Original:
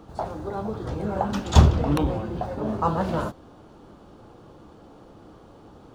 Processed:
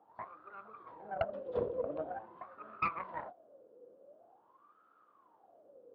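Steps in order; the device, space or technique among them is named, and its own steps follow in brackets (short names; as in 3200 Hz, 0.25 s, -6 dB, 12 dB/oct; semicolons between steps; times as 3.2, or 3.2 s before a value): wah-wah guitar rig (wah 0.46 Hz 490–1300 Hz, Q 15; tube stage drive 28 dB, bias 0.8; speaker cabinet 95–4100 Hz, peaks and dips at 150 Hz -4 dB, 850 Hz -9 dB, 1200 Hz -4 dB); gain +9.5 dB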